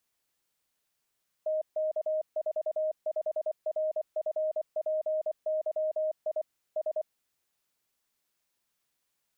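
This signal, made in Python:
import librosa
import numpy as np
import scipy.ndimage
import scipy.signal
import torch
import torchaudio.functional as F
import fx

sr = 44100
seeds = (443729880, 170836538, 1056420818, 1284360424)

y = fx.morse(sr, text='TK45RFPYI S', wpm=24, hz=623.0, level_db=-26.5)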